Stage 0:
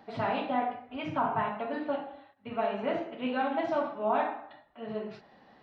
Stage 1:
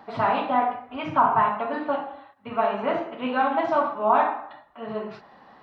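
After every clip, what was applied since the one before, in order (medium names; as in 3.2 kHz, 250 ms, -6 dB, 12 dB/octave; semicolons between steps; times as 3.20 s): peaking EQ 1.1 kHz +9.5 dB 0.9 oct; trim +3.5 dB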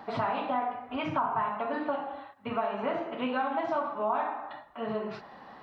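compression 3:1, threshold -32 dBFS, peak gain reduction 13 dB; trim +2 dB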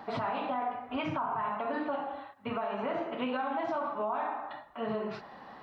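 peak limiter -24.5 dBFS, peak gain reduction 7 dB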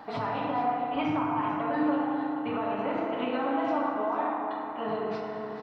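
delay 440 ms -11.5 dB; FDN reverb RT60 3.8 s, high-frequency decay 0.35×, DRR 0 dB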